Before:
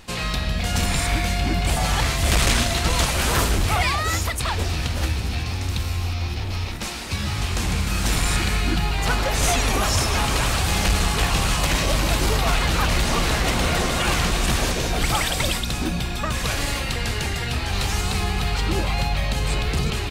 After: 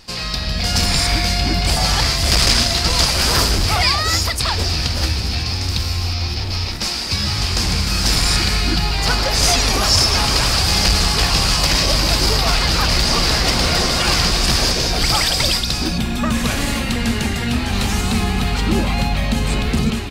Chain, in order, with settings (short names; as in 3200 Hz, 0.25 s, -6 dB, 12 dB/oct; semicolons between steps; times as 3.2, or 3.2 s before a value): AGC gain up to 5 dB; bell 4900 Hz +14.5 dB 0.41 oct, from 15.98 s 230 Hz; gain -1.5 dB